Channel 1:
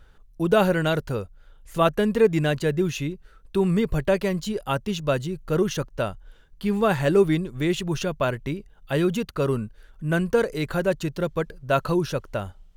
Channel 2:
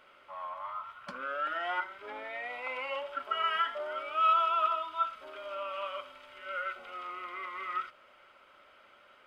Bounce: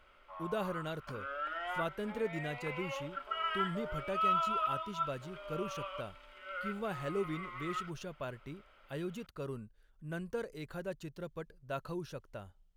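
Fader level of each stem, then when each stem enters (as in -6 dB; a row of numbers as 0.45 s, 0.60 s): -17.5 dB, -5.0 dB; 0.00 s, 0.00 s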